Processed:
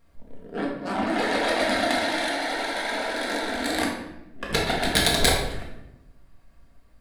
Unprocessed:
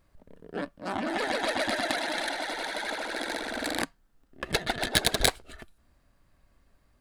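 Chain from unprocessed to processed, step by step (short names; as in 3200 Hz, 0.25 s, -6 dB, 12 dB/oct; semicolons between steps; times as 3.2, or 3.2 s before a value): shoebox room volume 340 m³, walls mixed, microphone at 1.7 m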